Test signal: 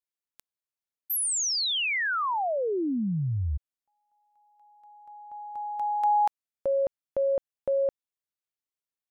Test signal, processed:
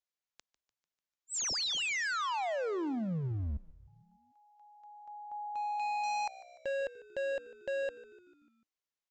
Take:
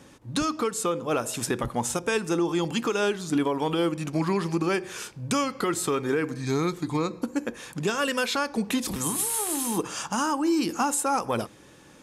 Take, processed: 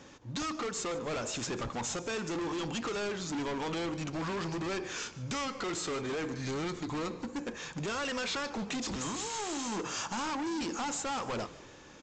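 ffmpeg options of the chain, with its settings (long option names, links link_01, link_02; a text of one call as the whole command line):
ffmpeg -i in.wav -filter_complex "[0:a]equalizer=frequency=130:width_type=o:width=2.7:gain=-4.5,aresample=16000,asoftclip=type=hard:threshold=-33dB,aresample=44100,asplit=6[link_01][link_02][link_03][link_04][link_05][link_06];[link_02]adelay=148,afreqshift=-64,volume=-18dB[link_07];[link_03]adelay=296,afreqshift=-128,volume=-23.2dB[link_08];[link_04]adelay=444,afreqshift=-192,volume=-28.4dB[link_09];[link_05]adelay=592,afreqshift=-256,volume=-33.6dB[link_10];[link_06]adelay=740,afreqshift=-320,volume=-38.8dB[link_11];[link_01][link_07][link_08][link_09][link_10][link_11]amix=inputs=6:normalize=0" out.wav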